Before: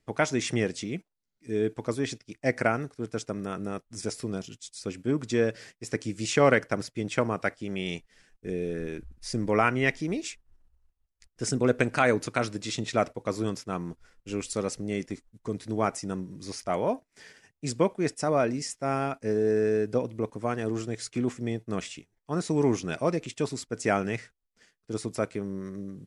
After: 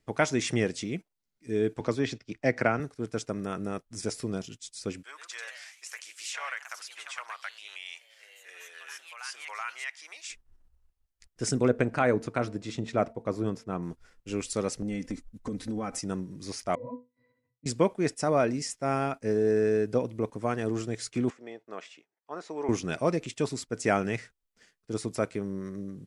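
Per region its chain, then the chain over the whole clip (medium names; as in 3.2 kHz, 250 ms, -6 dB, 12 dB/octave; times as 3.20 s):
1.80–2.80 s: low-pass 5.3 kHz + three bands compressed up and down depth 40%
5.03–10.30 s: high-pass 1 kHz 24 dB/octave + compression 2:1, threshold -39 dBFS + ever faster or slower copies 119 ms, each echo +2 st, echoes 3, each echo -6 dB
11.68–13.83 s: treble shelf 2.1 kHz -12 dB + de-hum 225.7 Hz, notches 4
14.82–16.01 s: bass shelf 190 Hz +10.5 dB + comb 3.9 ms, depth 92% + compression 10:1, threshold -29 dBFS
16.75–17.66 s: Gaussian low-pass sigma 2.2 samples + pitch-class resonator B, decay 0.21 s
21.30–22.69 s: band-pass 630–6500 Hz + treble shelf 2 kHz -12 dB
whole clip: none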